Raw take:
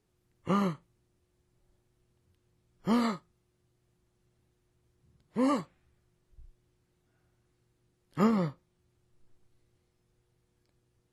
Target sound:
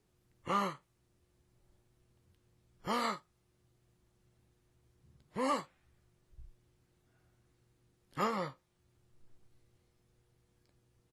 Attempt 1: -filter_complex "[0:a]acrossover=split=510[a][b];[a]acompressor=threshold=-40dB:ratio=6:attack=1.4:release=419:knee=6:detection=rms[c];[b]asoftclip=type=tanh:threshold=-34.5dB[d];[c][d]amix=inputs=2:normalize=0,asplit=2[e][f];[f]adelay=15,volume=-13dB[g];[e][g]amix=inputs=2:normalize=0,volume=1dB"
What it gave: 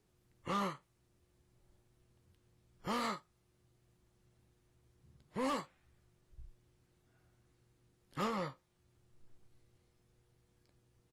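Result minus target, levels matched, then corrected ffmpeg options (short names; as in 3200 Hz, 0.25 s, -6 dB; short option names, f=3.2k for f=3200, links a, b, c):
soft clip: distortion +13 dB
-filter_complex "[0:a]acrossover=split=510[a][b];[a]acompressor=threshold=-40dB:ratio=6:attack=1.4:release=419:knee=6:detection=rms[c];[b]asoftclip=type=tanh:threshold=-23.5dB[d];[c][d]amix=inputs=2:normalize=0,asplit=2[e][f];[f]adelay=15,volume=-13dB[g];[e][g]amix=inputs=2:normalize=0,volume=1dB"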